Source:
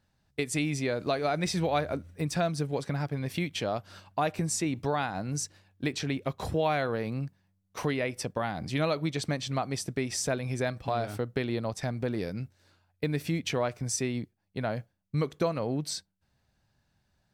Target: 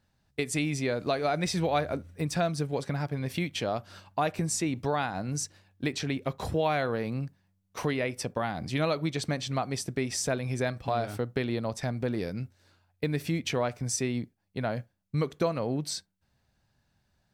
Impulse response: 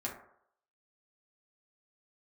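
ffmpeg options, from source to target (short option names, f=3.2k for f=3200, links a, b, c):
-filter_complex "[0:a]asplit=2[a][b];[1:a]atrim=start_sample=2205,atrim=end_sample=3528[c];[b][c]afir=irnorm=-1:irlink=0,volume=-21.5dB[d];[a][d]amix=inputs=2:normalize=0"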